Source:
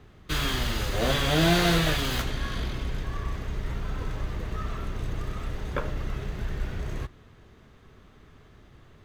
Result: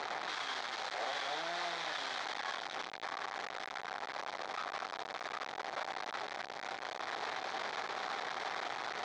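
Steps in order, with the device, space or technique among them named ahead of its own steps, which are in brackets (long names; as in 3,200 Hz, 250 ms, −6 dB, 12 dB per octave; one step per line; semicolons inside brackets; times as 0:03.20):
home computer beeper (sign of each sample alone; loudspeaker in its box 720–4,900 Hz, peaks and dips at 770 Hz +8 dB, 2,800 Hz −9 dB, 4,800 Hz −3 dB)
level −5 dB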